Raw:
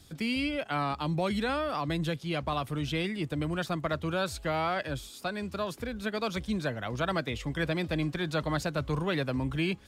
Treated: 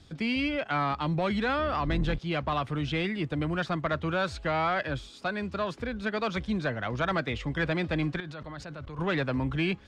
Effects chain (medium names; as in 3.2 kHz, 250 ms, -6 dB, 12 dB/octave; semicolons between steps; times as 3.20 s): 1.58–2.19 s: octave divider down 2 oct, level +1 dB; dynamic bell 1.6 kHz, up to +4 dB, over -43 dBFS, Q 0.92; 8.20–8.99 s: level held to a coarse grid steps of 21 dB; saturation -21 dBFS, distortion -19 dB; distance through air 110 m; trim +2.5 dB